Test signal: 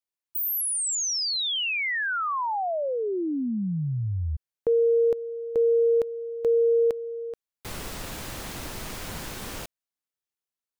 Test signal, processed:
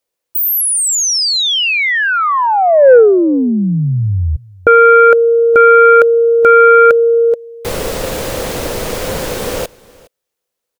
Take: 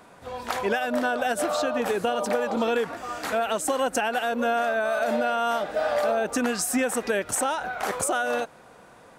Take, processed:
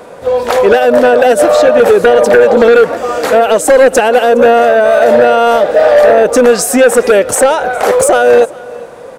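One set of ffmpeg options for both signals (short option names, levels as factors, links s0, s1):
-filter_complex "[0:a]equalizer=f=500:w=2.3:g=14,asplit=2[s0][s1];[s1]aecho=0:1:413:0.0668[s2];[s0][s2]amix=inputs=2:normalize=0,aeval=exprs='0.708*sin(PI/2*2.51*val(0)/0.708)':c=same,volume=1.19"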